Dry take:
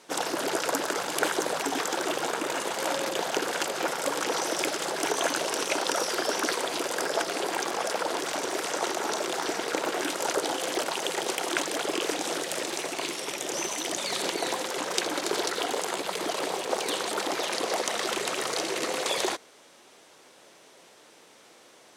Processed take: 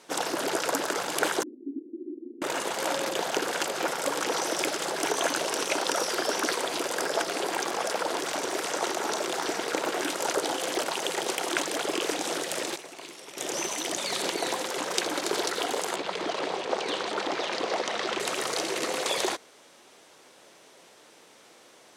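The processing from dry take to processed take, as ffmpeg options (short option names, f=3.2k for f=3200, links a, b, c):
-filter_complex "[0:a]asettb=1/sr,asplit=3[a][b][c];[a]atrim=end=1.434[d];[b]atrim=start=1.43:end=2.42,asetpts=PTS-STARTPTS,afade=t=in:d=0.004:c=qsin,afade=t=out:st=0.986:d=0.004:c=qsin,asuperpass=centerf=290:order=8:qfactor=2.3[e];[c]atrim=start=2.416[f];[d][e]acrossfade=d=0.004:c1=hsin:c2=qsin[g];[g][f]acrossfade=d=0.004:c1=qsin:c2=hsin,asettb=1/sr,asplit=3[h][i][j];[h]atrim=end=15.964[k];[i]atrim=start=15.96:end=18.2,asetpts=PTS-STARTPTS,afade=t=in:d=0.004:c=qsin,afade=t=out:st=2.236:d=0.004:c=qsin,lowpass=4.7k[l];[j]atrim=start=18.196[m];[k][l]acrossfade=d=0.004:c1=hsin:c2=qsin[n];[n][m]acrossfade=d=0.004:c1=qsin:c2=hsin,asplit=3[o][p][q];[o]atrim=end=12.762[r];[p]atrim=start=12.758:end=13.372,asetpts=PTS-STARTPTS,volume=-11dB[s];[q]atrim=start=13.368[t];[r][s]acrossfade=d=0.004:c1=hsin:c2=hsin[u];[u][t]acrossfade=d=0.004:c1=hsin:c2=hsin"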